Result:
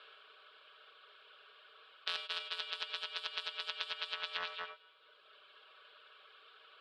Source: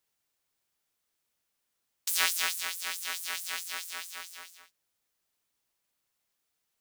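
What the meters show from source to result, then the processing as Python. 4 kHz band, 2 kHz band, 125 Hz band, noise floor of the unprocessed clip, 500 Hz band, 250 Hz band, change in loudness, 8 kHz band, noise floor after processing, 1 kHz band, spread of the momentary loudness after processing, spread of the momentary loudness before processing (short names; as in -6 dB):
-3.0 dB, -7.0 dB, n/a, -81 dBFS, 0.0 dB, under -10 dB, -8.0 dB, -28.5 dB, -64 dBFS, -4.0 dB, 20 LU, 16 LU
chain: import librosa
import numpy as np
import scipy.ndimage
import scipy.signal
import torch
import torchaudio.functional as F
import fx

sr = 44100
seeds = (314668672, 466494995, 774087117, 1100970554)

y = fx.bin_compress(x, sr, power=0.6)
y = fx.cabinet(y, sr, low_hz=220.0, low_slope=24, high_hz=3200.0, hz=(230.0, 690.0, 2500.0), db=(-9, -6, -7))
y = fx.over_compress(y, sr, threshold_db=-42.0, ratio=-0.5)
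y = fx.echo_feedback(y, sr, ms=227, feedback_pct=50, wet_db=-16)
y = fx.dereverb_blind(y, sr, rt60_s=1.5)
y = fx.rev_gated(y, sr, seeds[0], gate_ms=120, shape='rising', drr_db=6.5)
y = fx.dynamic_eq(y, sr, hz=1400.0, q=1.2, threshold_db=-57.0, ratio=4.0, max_db=-5)
y = fx.fixed_phaser(y, sr, hz=1300.0, stages=8)
y = fx.doppler_dist(y, sr, depth_ms=0.14)
y = y * 10.0 ** (7.5 / 20.0)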